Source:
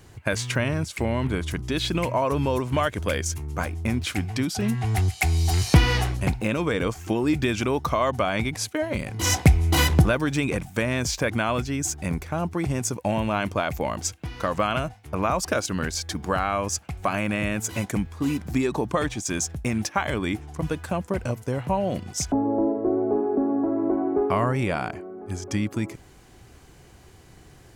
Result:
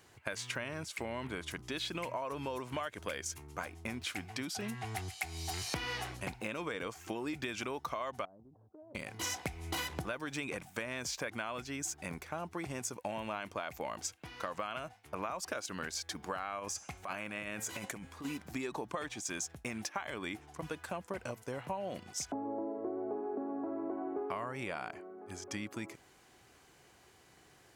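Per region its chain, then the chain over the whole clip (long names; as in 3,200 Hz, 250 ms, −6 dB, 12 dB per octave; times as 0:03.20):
0:08.25–0:08.95: Gaussian smoothing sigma 12 samples + downward compressor 5 to 1, threshold −42 dBFS
0:16.59–0:18.25: hum removal 267.8 Hz, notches 39 + compressor whose output falls as the input rises −29 dBFS
whole clip: low-pass filter 1,100 Hz 6 dB per octave; spectral tilt +4.5 dB per octave; downward compressor 6 to 1, threshold −30 dBFS; level −4.5 dB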